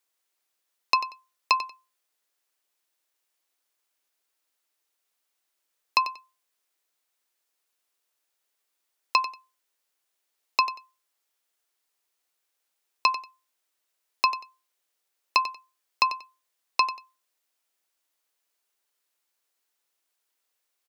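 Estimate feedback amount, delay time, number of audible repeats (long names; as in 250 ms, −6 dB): 21%, 93 ms, 2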